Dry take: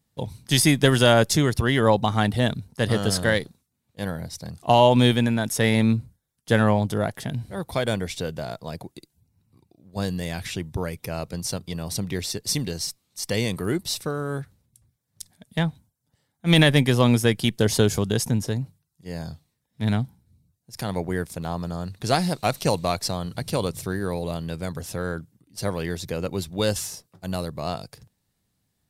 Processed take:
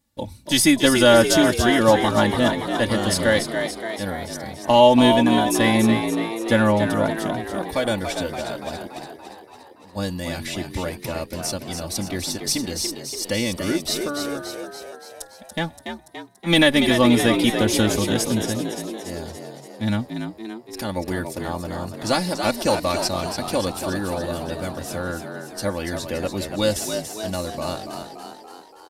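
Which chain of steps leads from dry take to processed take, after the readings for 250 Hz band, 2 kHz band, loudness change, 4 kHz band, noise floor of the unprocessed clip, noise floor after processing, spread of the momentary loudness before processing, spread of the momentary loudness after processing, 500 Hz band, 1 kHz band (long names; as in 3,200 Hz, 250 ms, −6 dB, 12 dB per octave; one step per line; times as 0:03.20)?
+4.0 dB, +3.5 dB, +2.5 dB, +3.5 dB, −76 dBFS, −46 dBFS, 16 LU, 18 LU, +3.5 dB, +3.5 dB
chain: comb filter 3.5 ms, depth 80%
echo with shifted repeats 286 ms, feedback 60%, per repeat +58 Hz, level −7 dB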